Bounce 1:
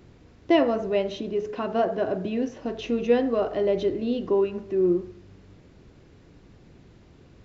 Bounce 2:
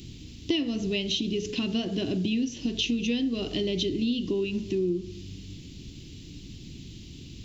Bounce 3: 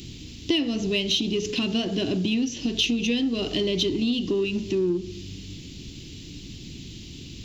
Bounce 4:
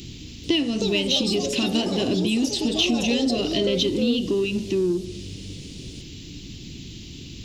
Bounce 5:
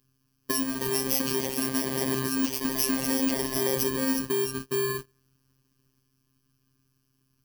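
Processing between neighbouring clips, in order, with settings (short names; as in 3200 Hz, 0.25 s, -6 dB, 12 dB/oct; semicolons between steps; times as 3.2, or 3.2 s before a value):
EQ curve 300 Hz 0 dB, 570 Hz -21 dB, 1500 Hz -19 dB, 3000 Hz +9 dB; compressor 5:1, threshold -34 dBFS, peak gain reduction 14 dB; gain +9 dB
low shelf 320 Hz -4.5 dB; in parallel at -10 dB: soft clip -31.5 dBFS, distortion -9 dB; on the sum: gain +4 dB
echoes that change speed 0.44 s, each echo +5 st, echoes 2, each echo -6 dB; gain +1.5 dB
FFT order left unsorted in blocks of 32 samples; gate -26 dBFS, range -28 dB; robotiser 132 Hz; gain -2.5 dB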